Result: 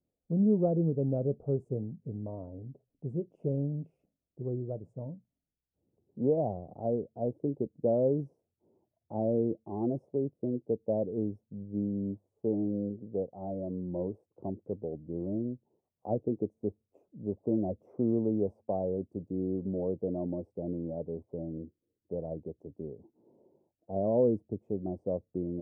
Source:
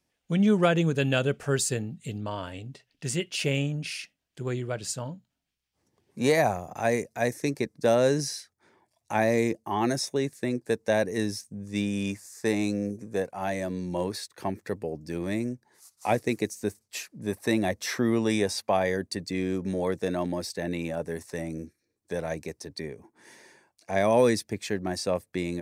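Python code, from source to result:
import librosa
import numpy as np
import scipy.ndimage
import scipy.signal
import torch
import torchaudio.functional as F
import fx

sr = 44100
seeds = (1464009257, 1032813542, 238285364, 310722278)

y = scipy.signal.sosfilt(scipy.signal.cheby2(4, 50, 1600.0, 'lowpass', fs=sr, output='sos'), x)
y = y * librosa.db_to_amplitude(-3.5)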